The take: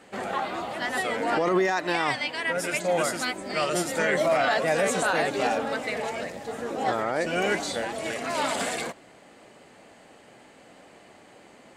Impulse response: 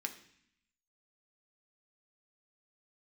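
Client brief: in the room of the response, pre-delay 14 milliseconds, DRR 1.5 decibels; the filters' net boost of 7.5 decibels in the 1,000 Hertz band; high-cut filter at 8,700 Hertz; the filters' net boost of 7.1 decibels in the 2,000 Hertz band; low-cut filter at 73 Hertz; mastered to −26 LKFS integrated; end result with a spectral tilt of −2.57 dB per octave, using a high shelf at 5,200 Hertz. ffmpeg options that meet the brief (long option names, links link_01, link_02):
-filter_complex "[0:a]highpass=73,lowpass=8700,equalizer=frequency=1000:width_type=o:gain=9,equalizer=frequency=2000:width_type=o:gain=5,highshelf=frequency=5200:gain=5.5,asplit=2[link_01][link_02];[1:a]atrim=start_sample=2205,adelay=14[link_03];[link_02][link_03]afir=irnorm=-1:irlink=0,volume=-1.5dB[link_04];[link_01][link_04]amix=inputs=2:normalize=0,volume=-7dB"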